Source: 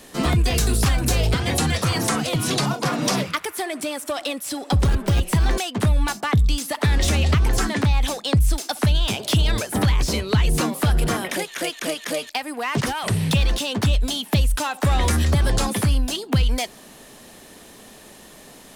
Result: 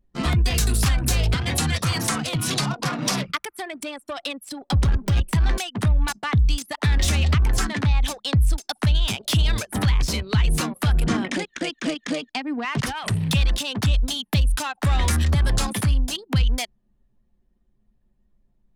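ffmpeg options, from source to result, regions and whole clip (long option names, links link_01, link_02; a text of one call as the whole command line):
ffmpeg -i in.wav -filter_complex "[0:a]asettb=1/sr,asplit=3[link_01][link_02][link_03];[link_01]atrim=end=11.074[link_04];[link_02]atrim=start=11.07:end=12.65,asetpts=PTS-STARTPTS,afade=type=in:duration=0.004:curve=qsin,afade=type=out:start_time=1.576:duration=0.004:curve=qsin,asoftclip=type=hard:threshold=-17.5dB,lowpass=frequency=8300:width=0.5412,lowpass=frequency=8300:width=1.3066,equalizer=frequency=260:width_type=o:width=0.91:gain=13[link_05];[link_03]atrim=start=12.646[link_06];[link_04][link_05]acrossfade=duration=0.004:curve1=hsin:curve2=qsin[link_07];[link_07][link_06]acrossfade=duration=0.004:curve1=qsin:curve2=hsin,anlmdn=158,equalizer=frequency=460:width_type=o:width=1.9:gain=-7" out.wav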